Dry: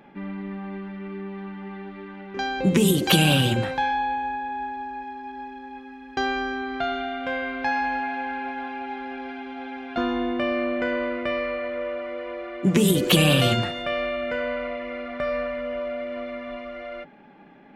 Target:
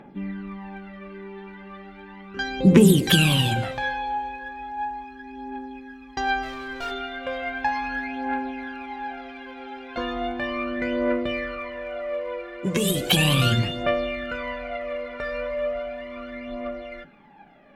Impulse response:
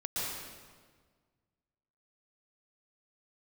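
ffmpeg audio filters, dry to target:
-filter_complex "[0:a]asplit=3[link_01][link_02][link_03];[link_01]afade=type=out:start_time=6.42:duration=0.02[link_04];[link_02]volume=26.5dB,asoftclip=hard,volume=-26.5dB,afade=type=in:start_time=6.42:duration=0.02,afade=type=out:start_time=6.9:duration=0.02[link_05];[link_03]afade=type=in:start_time=6.9:duration=0.02[link_06];[link_04][link_05][link_06]amix=inputs=3:normalize=0,aphaser=in_gain=1:out_gain=1:delay=2.3:decay=0.65:speed=0.36:type=triangular,asplit=2[link_07][link_08];[1:a]atrim=start_sample=2205,afade=type=out:start_time=0.36:duration=0.01,atrim=end_sample=16317[link_09];[link_08][link_09]afir=irnorm=-1:irlink=0,volume=-23dB[link_10];[link_07][link_10]amix=inputs=2:normalize=0,volume=-3dB"

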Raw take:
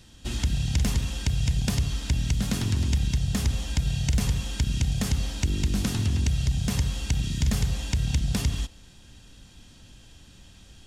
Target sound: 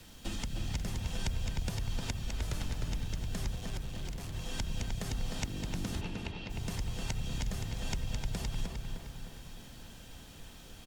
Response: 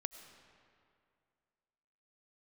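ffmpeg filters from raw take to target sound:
-filter_complex "[0:a]equalizer=frequency=650:width=0.51:gain=5.5,acompressor=threshold=-30dB:ratio=20,asettb=1/sr,asplit=3[link_01][link_02][link_03];[link_01]atrim=end=3.564[link_04];[link_02]atrim=start=3.56:end=4.34,asetpts=PTS-STARTPTS,afade=type=in:duration=0.004:curve=qsin,afade=type=out:start_time=0.776:duration=0.004:curve=qsin,asoftclip=type=hard:threshold=-36.5dB[link_05];[link_03]atrim=start=4.336[link_06];[link_04][link_05]acrossfade=duration=0.004:curve1=hsin:curve2=qsin[link_07];[link_07][link_06]acrossfade=duration=0.004:curve1=qsin:curve2=hsin,afreqshift=-26,acrusher=bits=8:mix=0:aa=0.000001,asettb=1/sr,asplit=3[link_08][link_09][link_10];[link_08]atrim=end=2.224[link_11];[link_09]atrim=start=2.22:end=2.89,asetpts=PTS-STARTPTS,afade=type=in:duration=0.004:curve=qsin,afade=type=out:start_time=0.666:duration=0.004:curve=qsin,afreqshift=-80[link_12];[link_10]atrim=start=2.886[link_13];[link_11][link_12]acrossfade=duration=0.004:curve1=hsin:curve2=qsin[link_14];[link_14][link_13]acrossfade=duration=0.004:curve1=qsin:curve2=hsin,asplit=3[link_15][link_16][link_17];[link_15]afade=type=out:start_time=6:duration=0.02[link_18];[link_16]highpass=330,equalizer=frequency=430:width_type=q:width=4:gain=9,equalizer=frequency=880:width_type=q:width=4:gain=8,equalizer=frequency=2600:width_type=q:width=4:gain=8,lowpass=frequency=4400:width=0.5412,lowpass=frequency=4400:width=1.3066,afade=type=in:start_time=6:duration=0.02,afade=type=out:start_time=6.49:duration=0.02[link_19];[link_17]afade=type=in:start_time=6.49:duration=0.02[link_20];[link_18][link_19][link_20]amix=inputs=3:normalize=0,asplit=2[link_21][link_22];[link_22]adelay=306,lowpass=frequency=3100:poles=1,volume=-3.5dB,asplit=2[link_23][link_24];[link_24]adelay=306,lowpass=frequency=3100:poles=1,volume=0.55,asplit=2[link_25][link_26];[link_26]adelay=306,lowpass=frequency=3100:poles=1,volume=0.55,asplit=2[link_27][link_28];[link_28]adelay=306,lowpass=frequency=3100:poles=1,volume=0.55,asplit=2[link_29][link_30];[link_30]adelay=306,lowpass=frequency=3100:poles=1,volume=0.55,asplit=2[link_31][link_32];[link_32]adelay=306,lowpass=frequency=3100:poles=1,volume=0.55,asplit=2[link_33][link_34];[link_34]adelay=306,lowpass=frequency=3100:poles=1,volume=0.55,asplit=2[link_35][link_36];[link_36]adelay=306,lowpass=frequency=3100:poles=1,volume=0.55[link_37];[link_21][link_23][link_25][link_27][link_29][link_31][link_33][link_35][link_37]amix=inputs=9:normalize=0[link_38];[1:a]atrim=start_sample=2205,atrim=end_sample=3969[link_39];[link_38][link_39]afir=irnorm=-1:irlink=0" -ar 48000 -c:a aac -b:a 96k

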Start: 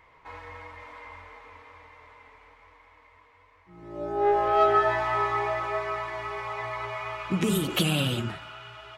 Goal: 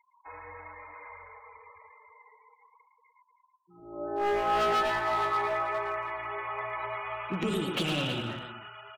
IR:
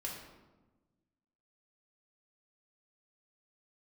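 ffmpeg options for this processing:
-filter_complex "[0:a]adynamicsmooth=sensitivity=7.5:basefreq=7400,bass=frequency=250:gain=-7,treble=frequency=4000:gain=-5,afftfilt=real='re*gte(hypot(re,im),0.00708)':imag='im*gte(hypot(re,im),0.00708)':win_size=1024:overlap=0.75,asoftclip=type=hard:threshold=-23dB,asplit=2[link_01][link_02];[link_02]aecho=0:1:112|319:0.501|0.251[link_03];[link_01][link_03]amix=inputs=2:normalize=0,volume=-2dB"

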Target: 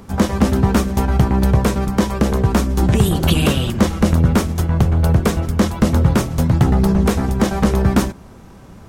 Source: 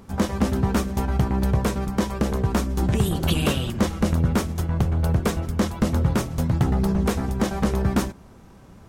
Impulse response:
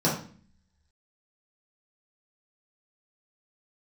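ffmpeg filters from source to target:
-filter_complex "[0:a]acrossover=split=340[link_01][link_02];[link_02]acompressor=threshold=-23dB:ratio=6[link_03];[link_01][link_03]amix=inputs=2:normalize=0,volume=7dB"

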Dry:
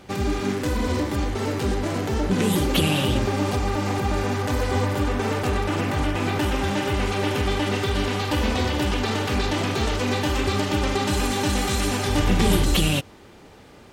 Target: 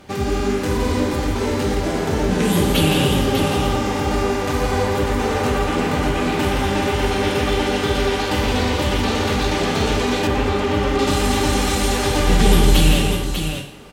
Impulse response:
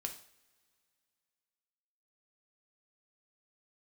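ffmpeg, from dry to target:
-filter_complex "[0:a]aecho=1:1:168|596:0.473|0.473[link_01];[1:a]atrim=start_sample=2205,asetrate=33075,aresample=44100[link_02];[link_01][link_02]afir=irnorm=-1:irlink=0,asettb=1/sr,asplit=3[link_03][link_04][link_05];[link_03]atrim=end=10.274[link_06];[link_04]atrim=start=10.27:end=10.99,asetpts=PTS-STARTPTS,afade=type=in:duration=0.004:curve=qsin,afade=type=out:start_time=0.716:duration=0.004:curve=qsin,acrossover=split=2900[link_07][link_08];[link_08]acompressor=threshold=-40dB:ratio=4:attack=1:release=60[link_09];[link_07][link_09]amix=inputs=2:normalize=0[link_10];[link_05]atrim=start=10.986[link_11];[link_06][link_10]acrossfade=duration=0.004:curve1=hsin:curve2=qsin[link_12];[link_12][link_11]acrossfade=duration=0.004:curve1=qsin:curve2=hsin,volume=2.5dB"

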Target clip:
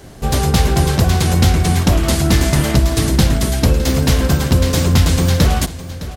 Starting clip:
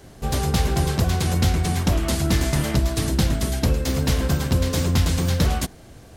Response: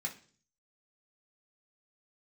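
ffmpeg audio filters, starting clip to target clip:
-af "aecho=1:1:611:0.178,volume=7dB"

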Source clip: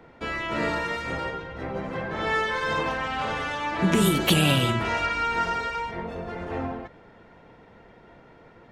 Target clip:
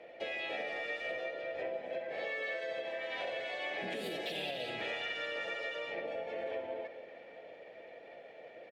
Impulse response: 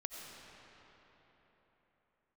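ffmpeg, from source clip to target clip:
-filter_complex "[0:a]asplit=3[link_01][link_02][link_03];[link_01]bandpass=frequency=530:width_type=q:width=8,volume=0dB[link_04];[link_02]bandpass=frequency=1840:width_type=q:width=8,volume=-6dB[link_05];[link_03]bandpass=frequency=2480:width_type=q:width=8,volume=-9dB[link_06];[link_04][link_05][link_06]amix=inputs=3:normalize=0,alimiter=level_in=6dB:limit=-24dB:level=0:latency=1:release=397,volume=-6dB,acompressor=threshold=-46dB:ratio=6,asplit=3[link_07][link_08][link_09];[link_08]asetrate=29433,aresample=44100,atempo=1.49831,volume=-17dB[link_10];[link_09]asetrate=55563,aresample=44100,atempo=0.793701,volume=-1dB[link_11];[link_07][link_10][link_11]amix=inputs=3:normalize=0,aemphasis=mode=production:type=cd,asplit=2[link_12][link_13];[1:a]atrim=start_sample=2205,adelay=70[link_14];[link_13][link_14]afir=irnorm=-1:irlink=0,volume=-9.5dB[link_15];[link_12][link_15]amix=inputs=2:normalize=0,volume=6.5dB"

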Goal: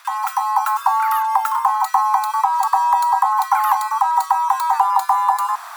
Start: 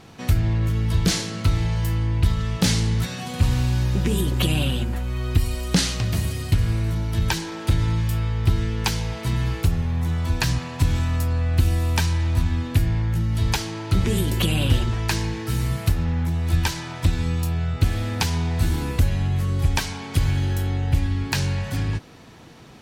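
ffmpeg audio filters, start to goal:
ffmpeg -i in.wav -af "areverse,acompressor=mode=upward:threshold=-23dB:ratio=2.5,areverse,afreqshift=160,asubboost=boost=8:cutoff=210,asetrate=174636,aresample=44100,volume=-3.5dB" out.wav

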